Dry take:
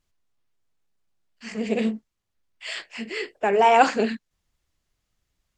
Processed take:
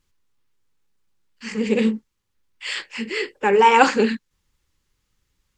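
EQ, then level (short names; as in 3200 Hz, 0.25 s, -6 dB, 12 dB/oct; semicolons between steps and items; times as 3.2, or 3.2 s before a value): Butterworth band-stop 670 Hz, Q 3.4; +5.0 dB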